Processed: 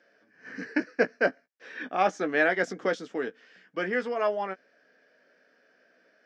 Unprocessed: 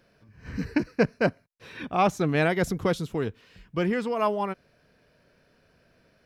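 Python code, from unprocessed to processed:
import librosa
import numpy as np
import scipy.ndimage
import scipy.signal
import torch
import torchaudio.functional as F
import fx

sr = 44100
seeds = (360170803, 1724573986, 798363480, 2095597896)

y = fx.cabinet(x, sr, low_hz=280.0, low_slope=24, high_hz=6000.0, hz=(370.0, 1000.0, 1700.0, 2600.0, 4000.0), db=(-5, -9, 7, -5, -9))
y = fx.doubler(y, sr, ms=16.0, db=-8.5)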